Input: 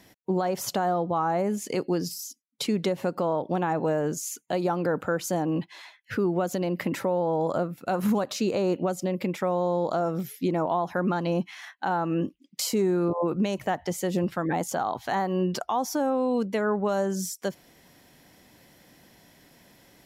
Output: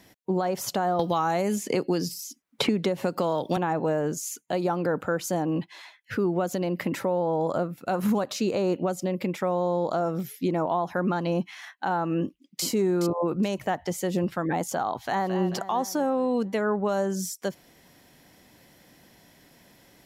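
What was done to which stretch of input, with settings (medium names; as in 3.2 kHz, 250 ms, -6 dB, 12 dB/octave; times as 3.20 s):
0.99–3.57 s: three bands compressed up and down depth 100%
12.20–12.64 s: echo throw 420 ms, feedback 20%, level -9 dB
14.98–15.38 s: echo throw 220 ms, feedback 55%, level -9.5 dB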